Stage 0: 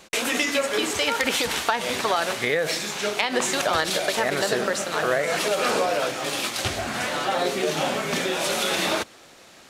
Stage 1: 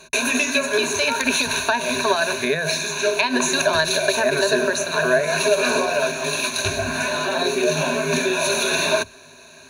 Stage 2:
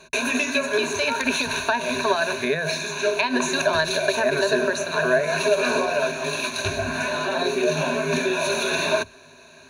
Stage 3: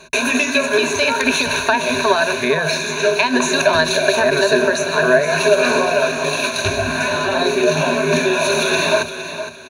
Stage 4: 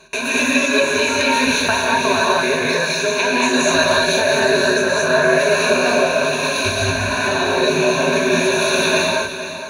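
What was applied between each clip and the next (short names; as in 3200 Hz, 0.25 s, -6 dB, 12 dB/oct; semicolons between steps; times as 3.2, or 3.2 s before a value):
ripple EQ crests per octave 1.5, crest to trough 18 dB
high shelf 5500 Hz -8.5 dB; gain -1.5 dB
feedback echo 0.463 s, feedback 26%, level -11 dB; gain +6 dB
non-linear reverb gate 0.26 s rising, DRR -4.5 dB; gain -5 dB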